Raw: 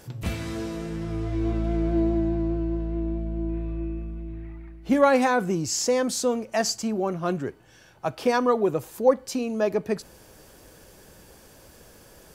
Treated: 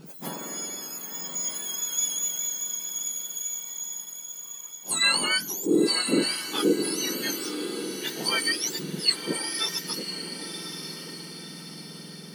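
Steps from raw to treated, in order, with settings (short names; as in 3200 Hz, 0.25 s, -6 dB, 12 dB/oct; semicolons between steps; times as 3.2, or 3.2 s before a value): spectrum mirrored in octaves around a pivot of 1500 Hz; diffused feedback echo 1.045 s, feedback 51%, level -8 dB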